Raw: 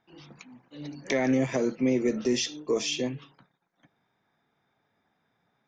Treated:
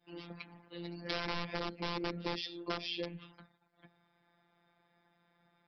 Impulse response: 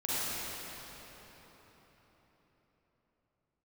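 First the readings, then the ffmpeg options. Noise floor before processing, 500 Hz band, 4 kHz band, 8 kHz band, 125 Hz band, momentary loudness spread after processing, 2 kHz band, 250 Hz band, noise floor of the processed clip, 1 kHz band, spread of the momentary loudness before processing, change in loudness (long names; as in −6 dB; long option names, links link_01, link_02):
−76 dBFS, −13.5 dB, −5.0 dB, −25.5 dB, −8.5 dB, 12 LU, −6.0 dB, −15.0 dB, −75 dBFS, −1.5 dB, 16 LU, −12.0 dB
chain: -af "aresample=11025,aeval=exprs='(mod(8.91*val(0)+1,2)-1)/8.91':channel_layout=same,aresample=44100,adynamicequalizer=threshold=0.00891:dfrequency=1200:dqfactor=0.89:tfrequency=1200:tqfactor=0.89:attack=5:release=100:ratio=0.375:range=2:mode=cutabove:tftype=bell,acompressor=threshold=-40dB:ratio=3,bandreject=frequency=50:width_type=h:width=6,bandreject=frequency=100:width_type=h:width=6,bandreject=frequency=150:width_type=h:width=6,afftfilt=real='hypot(re,im)*cos(PI*b)':imag='0':win_size=1024:overlap=0.75,volume=5dB"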